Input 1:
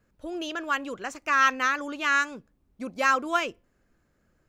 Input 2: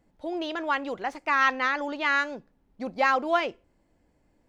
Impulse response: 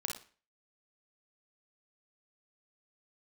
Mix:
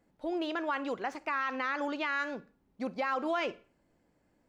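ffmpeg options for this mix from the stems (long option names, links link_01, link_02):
-filter_complex "[0:a]highshelf=frequency=5600:gain=-12,volume=-13dB,asplit=2[link_01][link_02];[link_02]volume=-7dB[link_03];[1:a]highpass=100,volume=-4dB,asplit=2[link_04][link_05];[link_05]volume=-18dB[link_06];[2:a]atrim=start_sample=2205[link_07];[link_03][link_06]amix=inputs=2:normalize=0[link_08];[link_08][link_07]afir=irnorm=-1:irlink=0[link_09];[link_01][link_04][link_09]amix=inputs=3:normalize=0,alimiter=limit=-23dB:level=0:latency=1:release=72"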